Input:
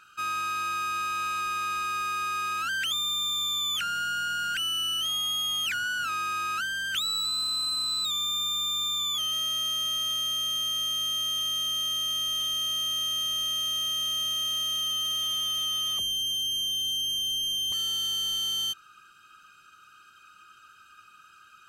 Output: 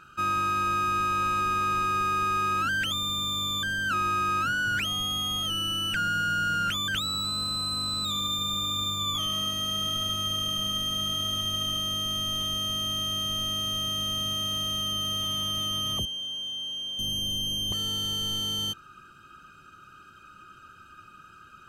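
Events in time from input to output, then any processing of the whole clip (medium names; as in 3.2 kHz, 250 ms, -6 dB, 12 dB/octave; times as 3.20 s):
3.63–6.88 s: reverse
8.00–11.79 s: tape echo 74 ms, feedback 77%, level -10 dB, low-pass 5.1 kHz
16.05–16.99 s: band-pass filter 1.6 kHz, Q 0.77
whole clip: tilt shelf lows +10 dB, about 920 Hz; trim +7 dB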